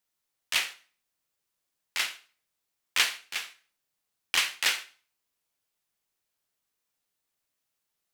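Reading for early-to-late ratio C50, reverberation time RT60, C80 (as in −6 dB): 15.5 dB, 0.40 s, 19.5 dB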